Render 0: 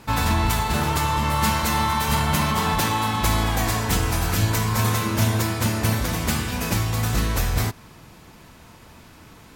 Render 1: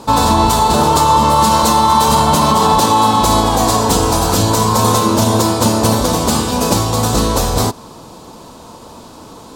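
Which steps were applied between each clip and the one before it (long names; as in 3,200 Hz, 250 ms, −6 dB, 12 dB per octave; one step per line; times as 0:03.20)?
graphic EQ with 10 bands 250 Hz +7 dB, 500 Hz +10 dB, 1,000 Hz +11 dB, 2,000 Hz −10 dB, 4,000 Hz +8 dB, 8,000 Hz +8 dB
boost into a limiter +4.5 dB
level −1 dB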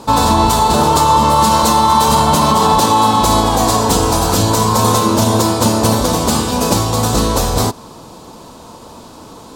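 no processing that can be heard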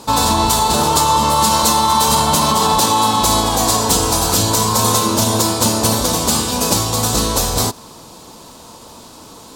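high-shelf EQ 2,500 Hz +8.5 dB
surface crackle 110 per second −30 dBFS
level −4.5 dB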